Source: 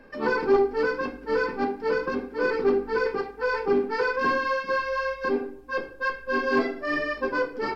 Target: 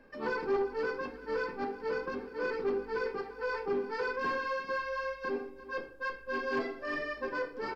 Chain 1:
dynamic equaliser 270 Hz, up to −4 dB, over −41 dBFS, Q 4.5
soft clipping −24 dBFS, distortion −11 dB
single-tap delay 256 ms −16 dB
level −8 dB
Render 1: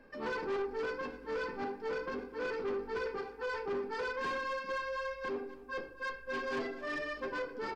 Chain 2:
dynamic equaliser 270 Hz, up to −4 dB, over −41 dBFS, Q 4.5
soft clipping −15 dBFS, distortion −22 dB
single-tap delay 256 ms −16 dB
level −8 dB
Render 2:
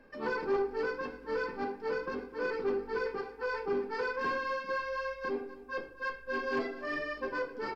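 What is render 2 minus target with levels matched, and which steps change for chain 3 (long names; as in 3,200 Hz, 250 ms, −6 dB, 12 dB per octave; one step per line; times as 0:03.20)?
echo 93 ms early
change: single-tap delay 349 ms −16 dB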